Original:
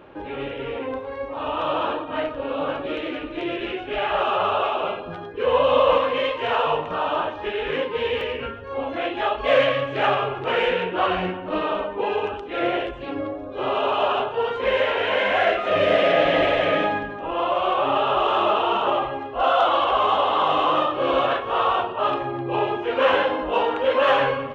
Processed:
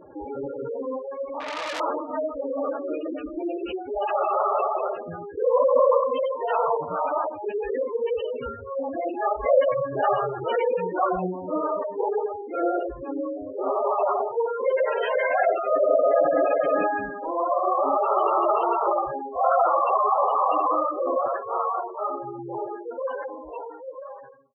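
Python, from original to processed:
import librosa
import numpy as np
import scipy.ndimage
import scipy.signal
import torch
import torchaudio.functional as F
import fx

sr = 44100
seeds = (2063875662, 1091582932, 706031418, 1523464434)

y = fx.fade_out_tail(x, sr, length_s=4.33)
y = fx.spec_gate(y, sr, threshold_db=-10, keep='strong')
y = fx.transformer_sat(y, sr, knee_hz=3900.0, at=(1.4, 1.8))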